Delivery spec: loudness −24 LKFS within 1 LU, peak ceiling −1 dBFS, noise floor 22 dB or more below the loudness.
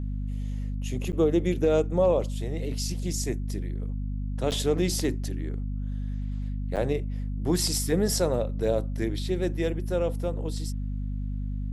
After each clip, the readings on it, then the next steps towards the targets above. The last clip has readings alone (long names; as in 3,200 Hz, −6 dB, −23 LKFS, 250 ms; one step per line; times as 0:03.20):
number of dropouts 3; longest dropout 8.2 ms; mains hum 50 Hz; hum harmonics up to 250 Hz; level of the hum −28 dBFS; integrated loudness −28.5 LKFS; sample peak −11.5 dBFS; target loudness −24.0 LKFS
→ repair the gap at 0:01.12/0:04.51/0:06.76, 8.2 ms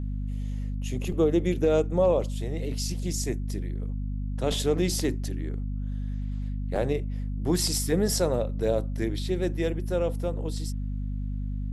number of dropouts 0; mains hum 50 Hz; hum harmonics up to 250 Hz; level of the hum −28 dBFS
→ hum removal 50 Hz, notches 5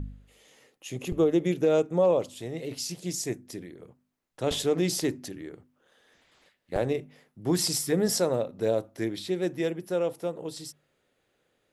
mains hum none found; integrated loudness −28.0 LKFS; sample peak −13.0 dBFS; target loudness −24.0 LKFS
→ level +4 dB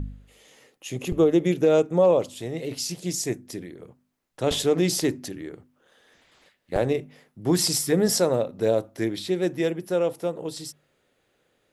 integrated loudness −24.5 LKFS; sample peak −9.0 dBFS; background noise floor −71 dBFS